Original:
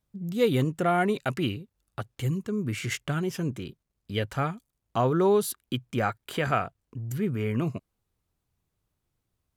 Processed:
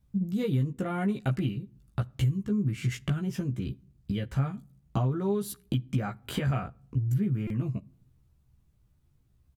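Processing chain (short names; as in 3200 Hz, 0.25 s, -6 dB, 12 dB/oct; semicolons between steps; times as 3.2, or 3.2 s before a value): tone controls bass +14 dB, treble -1 dB; compressor 10:1, threshold -27 dBFS, peak gain reduction 17 dB; doubler 15 ms -3 dB; on a send at -22 dB: reverb RT60 0.55 s, pre-delay 3 ms; on the sum: stuck buffer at 7.47, samples 128, times 10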